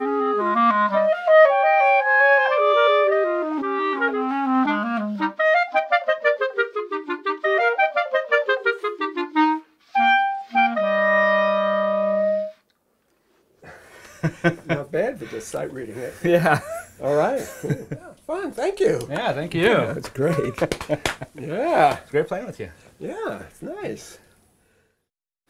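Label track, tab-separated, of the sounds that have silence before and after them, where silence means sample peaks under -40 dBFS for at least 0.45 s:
13.640000	24.160000	sound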